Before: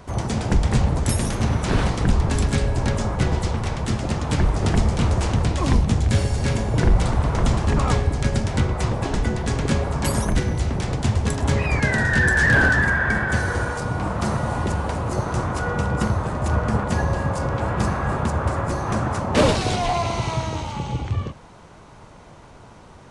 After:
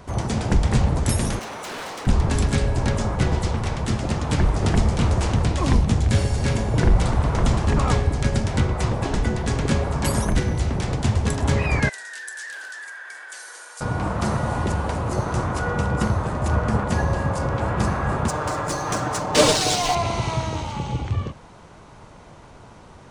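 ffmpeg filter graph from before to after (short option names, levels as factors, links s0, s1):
-filter_complex "[0:a]asettb=1/sr,asplit=3[s0][s1][s2];[s0]atrim=end=1.394[s3];[s1]atrim=start=1.39:end=2.07,asetpts=PTS-STARTPTS,afade=t=in:d=0.004:c=qsin,afade=t=out:st=0.676:d=0.004:c=qsin,highpass=480,volume=33.5,asoftclip=hard,volume=0.0299[s4];[s2]atrim=start=2.066[s5];[s3][s4]acrossfade=d=0.004:c1=hsin:c2=qsin[s6];[s6][s5]acrossfade=d=0.004:c1=qsin:c2=hsin,asettb=1/sr,asplit=3[s7][s8][s9];[s7]atrim=end=11.894[s10];[s8]atrim=start=11.89:end=13.81,asetpts=PTS-STARTPTS,afade=t=in:d=0.004:c=qsin,afade=t=out:st=1.916:d=0.004:c=qsin,highpass=f=350:w=0.5412,highpass=f=350:w=1.3066,acompressor=threshold=0.0794:ratio=2.5:attack=3.2:release=140:knee=1:detection=peak,aderivative[s11];[s9]atrim=start=13.806[s12];[s10][s11]acrossfade=d=0.004:c1=hsin:c2=qsin[s13];[s13][s12]acrossfade=d=0.004:c1=qsin:c2=hsin,asettb=1/sr,asplit=3[s14][s15][s16];[s14]atrim=end=18.284[s17];[s15]atrim=start=18.28:end=19.95,asetpts=PTS-STARTPTS,afade=t=in:d=0.004:c=qsin,afade=t=out:st=1.666:d=0.004:c=qsin,bass=f=250:g=-7,treble=f=4000:g=13,adynamicsmooth=sensitivity=4:basefreq=4800,aecho=1:1:6.6:0.51,atrim=end_sample=73647[s18];[s16]atrim=start=19.946[s19];[s17][s18]acrossfade=d=0.004:c1=hsin:c2=qsin[s20];[s20][s19]acrossfade=d=0.004:c1=qsin:c2=hsin"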